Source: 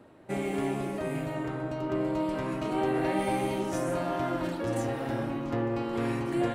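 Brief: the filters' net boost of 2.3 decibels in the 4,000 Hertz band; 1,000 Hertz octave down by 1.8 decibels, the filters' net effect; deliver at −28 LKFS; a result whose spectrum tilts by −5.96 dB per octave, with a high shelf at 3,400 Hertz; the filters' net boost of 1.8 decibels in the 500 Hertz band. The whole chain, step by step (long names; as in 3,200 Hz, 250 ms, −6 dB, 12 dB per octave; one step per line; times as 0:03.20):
parametric band 500 Hz +3.5 dB
parametric band 1,000 Hz −4 dB
high-shelf EQ 3,400 Hz −4.5 dB
parametric band 4,000 Hz +6.5 dB
level +2 dB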